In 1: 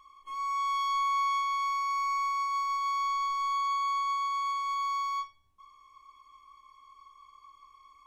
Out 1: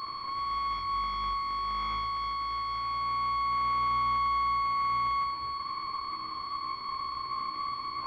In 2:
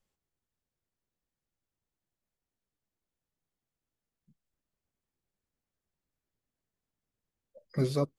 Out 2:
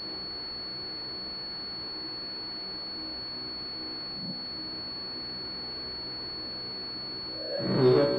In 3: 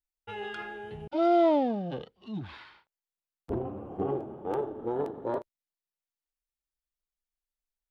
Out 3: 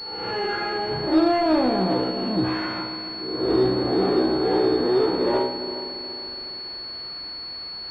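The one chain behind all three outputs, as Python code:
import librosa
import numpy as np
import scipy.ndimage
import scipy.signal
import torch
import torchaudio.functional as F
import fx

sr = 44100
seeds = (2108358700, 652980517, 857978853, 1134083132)

p1 = fx.spec_swells(x, sr, rise_s=0.32)
p2 = fx.low_shelf(p1, sr, hz=100.0, db=-11.0)
p3 = fx.power_curve(p2, sr, exponent=0.35)
p4 = scipy.signal.sosfilt(scipy.signal.butter(2, 44.0, 'highpass', fs=sr, output='sos'), p3)
p5 = fx.comb_fb(p4, sr, f0_hz=63.0, decay_s=0.73, harmonics='all', damping=0.0, mix_pct=90)
p6 = p5 + fx.echo_heads(p5, sr, ms=139, heads='all three', feedback_pct=56, wet_db=-18.0, dry=0)
p7 = fx.fold_sine(p6, sr, drive_db=6, ceiling_db=-19.0)
p8 = fx.peak_eq(p7, sr, hz=330.0, db=9.5, octaves=0.54)
y = fx.pwm(p8, sr, carrier_hz=4400.0)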